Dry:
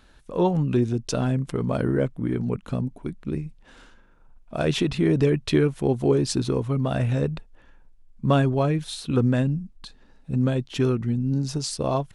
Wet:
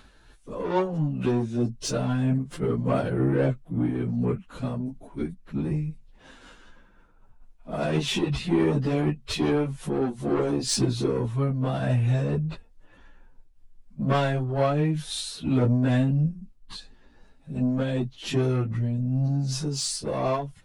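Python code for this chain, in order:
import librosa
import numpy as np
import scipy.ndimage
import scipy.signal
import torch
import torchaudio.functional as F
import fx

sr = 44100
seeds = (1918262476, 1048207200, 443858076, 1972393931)

y = 10.0 ** (-19.0 / 20.0) * np.tanh(x / 10.0 ** (-19.0 / 20.0))
y = fx.stretch_vocoder_free(y, sr, factor=1.7)
y = fx.am_noise(y, sr, seeds[0], hz=5.7, depth_pct=60)
y = y * librosa.db_to_amplitude(7.0)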